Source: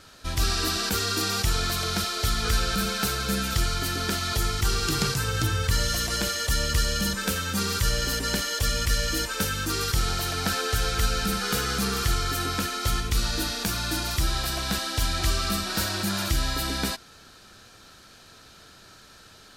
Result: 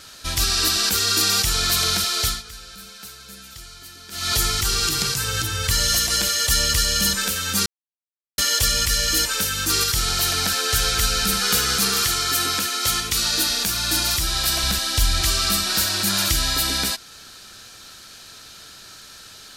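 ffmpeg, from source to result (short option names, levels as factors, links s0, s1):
-filter_complex "[0:a]asettb=1/sr,asplit=3[s0][s1][s2];[s0]atrim=end=11.764[s3];[s1]atrim=start=11.76:end=13.5,asetpts=PTS-STARTPTS,afade=t=in:d=0.004:c=qsin,afade=t=out:st=1.736:d=0.004:c=qsin,highpass=f=160:p=1[s4];[s2]atrim=start=13.496[s5];[s3][s4]acrossfade=d=0.004:c1=hsin:c2=qsin[s6];[s6][s5]acrossfade=d=0.004:c1=qsin:c2=hsin,asettb=1/sr,asplit=3[s7][s8][s9];[s7]atrim=end=14.634[s10];[s8]atrim=start=14.63:end=15.22,asetpts=PTS-STARTPTS,afade=t=in:d=0.004:c=qsin,afade=t=out:st=0.586:d=0.004:c=qsin,lowshelf=f=90:g=12[s11];[s9]atrim=start=15.216[s12];[s10][s11]acrossfade=d=0.004:c1=hsin:c2=qsin[s13];[s13][s12]acrossfade=d=0.004:c1=qsin:c2=hsin,asplit=5[s14][s15][s16][s17][s18];[s14]atrim=end=2.43,asetpts=PTS-STARTPTS,afade=t=out:st=2.2:d=0.23:silence=0.0944061[s19];[s15]atrim=start=2.43:end=4.11,asetpts=PTS-STARTPTS,volume=0.0944[s20];[s16]atrim=start=4.11:end=7.66,asetpts=PTS-STARTPTS,afade=t=in:d=0.23:silence=0.0944061,afade=t=out:st=3.546:d=0.004:c=hsin[s21];[s17]atrim=start=7.66:end=8.38,asetpts=PTS-STARTPTS,volume=0[s22];[s18]atrim=start=8.38,asetpts=PTS-STARTPTS,afade=t=in:d=0.004:c=hsin[s23];[s19][s20][s21][s22][s23]concat=n=5:v=0:a=1,highshelf=f=2000:g=11,alimiter=limit=0.376:level=0:latency=1:release=344,volume=1.12"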